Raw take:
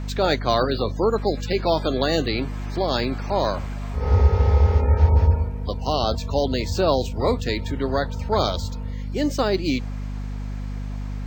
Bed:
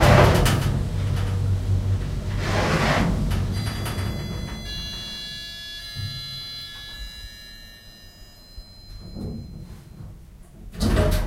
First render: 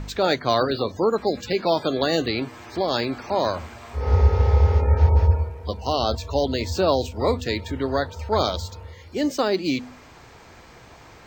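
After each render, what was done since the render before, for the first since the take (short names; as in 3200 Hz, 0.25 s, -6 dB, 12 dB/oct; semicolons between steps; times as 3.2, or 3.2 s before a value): de-hum 50 Hz, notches 5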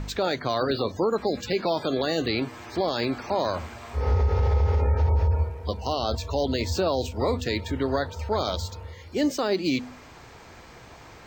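limiter -15 dBFS, peak gain reduction 9 dB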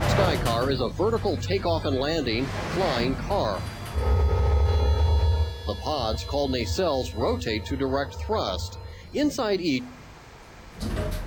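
add bed -9 dB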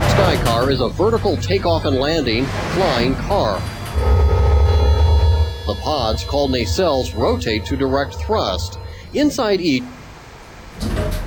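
gain +8 dB; limiter -3 dBFS, peak gain reduction 2 dB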